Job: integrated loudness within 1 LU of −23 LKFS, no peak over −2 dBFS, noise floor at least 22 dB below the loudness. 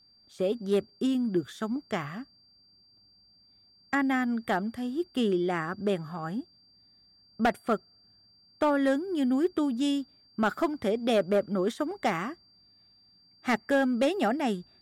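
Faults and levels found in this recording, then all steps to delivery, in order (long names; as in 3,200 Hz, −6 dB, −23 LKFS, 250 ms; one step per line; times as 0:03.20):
share of clipped samples 0.4%; peaks flattened at −18.0 dBFS; interfering tone 4,700 Hz; level of the tone −59 dBFS; integrated loudness −29.0 LKFS; sample peak −18.0 dBFS; target loudness −23.0 LKFS
→ clipped peaks rebuilt −18 dBFS
notch filter 4,700 Hz, Q 30
level +6 dB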